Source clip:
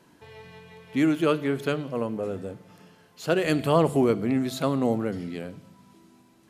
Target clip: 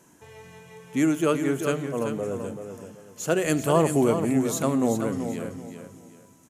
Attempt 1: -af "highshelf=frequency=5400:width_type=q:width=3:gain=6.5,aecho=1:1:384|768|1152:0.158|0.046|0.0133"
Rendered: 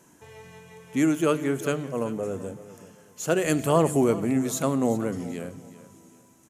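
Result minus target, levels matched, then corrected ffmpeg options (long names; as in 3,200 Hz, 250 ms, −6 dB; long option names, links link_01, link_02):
echo-to-direct −8 dB
-af "highshelf=frequency=5400:width_type=q:width=3:gain=6.5,aecho=1:1:384|768|1152:0.398|0.115|0.0335"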